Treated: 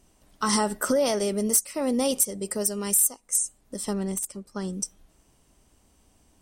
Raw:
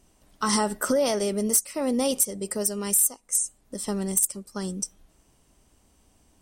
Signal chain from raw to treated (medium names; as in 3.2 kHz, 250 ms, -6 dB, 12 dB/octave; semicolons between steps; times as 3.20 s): 3.93–4.73 s: treble shelf 5.2 kHz -11 dB